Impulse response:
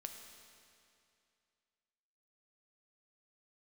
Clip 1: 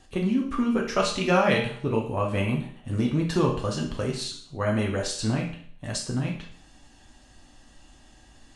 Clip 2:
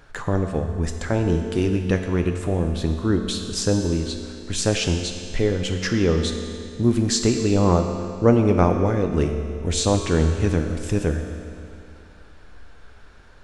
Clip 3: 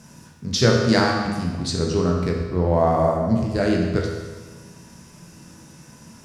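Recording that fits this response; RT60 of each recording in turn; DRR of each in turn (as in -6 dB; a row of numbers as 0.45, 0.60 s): 2; 0.55, 2.5, 1.4 s; -1.5, 4.0, -0.5 dB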